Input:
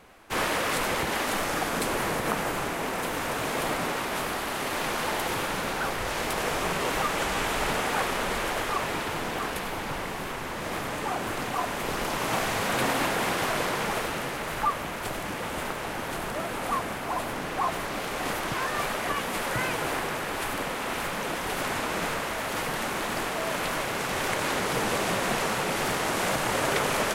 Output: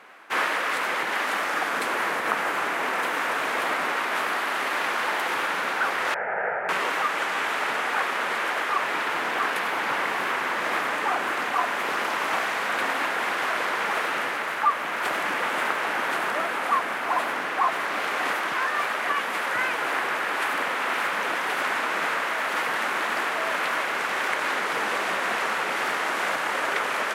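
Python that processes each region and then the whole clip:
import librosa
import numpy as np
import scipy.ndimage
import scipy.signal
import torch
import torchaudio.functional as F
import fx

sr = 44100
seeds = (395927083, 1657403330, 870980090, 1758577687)

y = fx.chain(x, sr, fx.lowpass(hz=1600.0, slope=24),
    fx.fixed_phaser(hz=1100.0, stages=6), at=(6.14, 6.69))
y = scipy.signal.sosfilt(scipy.signal.cheby1(2, 1.0, 270.0, 'highpass', fs=sr, output='sos'), y)
y = fx.peak_eq(y, sr, hz=1600.0, db=13.5, octaves=2.4)
y = fx.rider(y, sr, range_db=10, speed_s=0.5)
y = F.gain(torch.from_numpy(y), -5.5).numpy()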